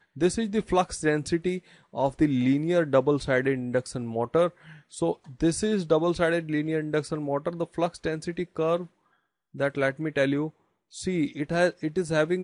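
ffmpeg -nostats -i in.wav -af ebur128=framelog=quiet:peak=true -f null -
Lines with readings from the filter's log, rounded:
Integrated loudness:
  I:         -26.7 LUFS
  Threshold: -37.1 LUFS
Loudness range:
  LRA:         4.1 LU
  Threshold: -47.2 LUFS
  LRA low:   -29.7 LUFS
  LRA high:  -25.5 LUFS
True peak:
  Peak:       -8.6 dBFS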